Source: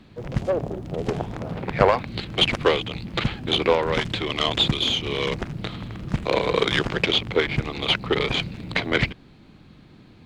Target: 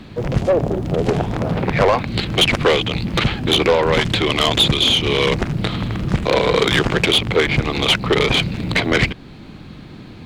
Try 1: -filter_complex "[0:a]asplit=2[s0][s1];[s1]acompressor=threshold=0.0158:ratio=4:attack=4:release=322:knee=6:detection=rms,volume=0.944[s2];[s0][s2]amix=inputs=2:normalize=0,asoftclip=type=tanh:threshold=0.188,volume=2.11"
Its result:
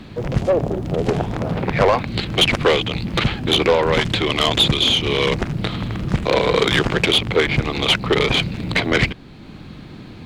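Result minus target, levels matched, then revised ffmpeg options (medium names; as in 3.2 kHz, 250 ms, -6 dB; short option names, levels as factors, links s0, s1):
compression: peak gain reduction +8.5 dB
-filter_complex "[0:a]asplit=2[s0][s1];[s1]acompressor=threshold=0.0596:ratio=4:attack=4:release=322:knee=6:detection=rms,volume=0.944[s2];[s0][s2]amix=inputs=2:normalize=0,asoftclip=type=tanh:threshold=0.188,volume=2.11"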